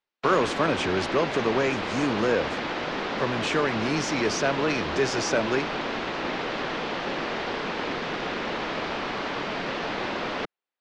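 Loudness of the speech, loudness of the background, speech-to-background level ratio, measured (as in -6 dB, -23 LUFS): -26.5 LUFS, -29.5 LUFS, 3.0 dB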